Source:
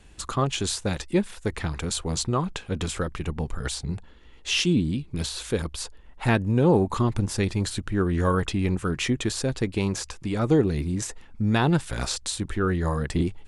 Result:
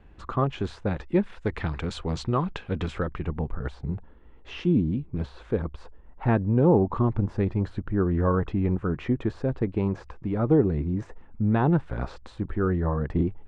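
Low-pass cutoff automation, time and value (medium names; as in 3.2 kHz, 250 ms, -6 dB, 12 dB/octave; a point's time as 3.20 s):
1.03 s 1.6 kHz
1.51 s 2.8 kHz
2.67 s 2.8 kHz
3.72 s 1.2 kHz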